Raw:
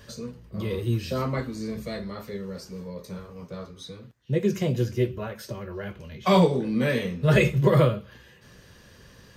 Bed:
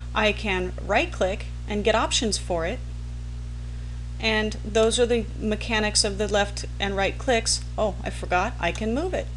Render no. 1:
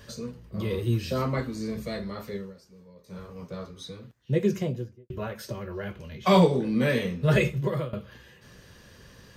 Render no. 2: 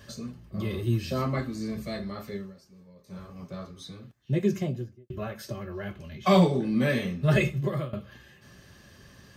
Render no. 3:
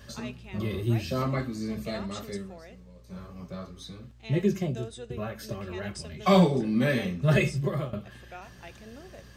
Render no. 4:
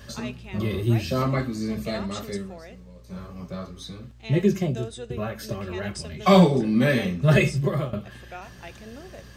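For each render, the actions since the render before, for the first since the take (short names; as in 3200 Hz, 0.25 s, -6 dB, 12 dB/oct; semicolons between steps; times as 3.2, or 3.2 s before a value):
2.37–3.23 dip -14.5 dB, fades 0.18 s; 4.38–5.1 studio fade out; 7.11–7.93 fade out, to -18 dB
notch comb 480 Hz
add bed -21.5 dB
gain +4.5 dB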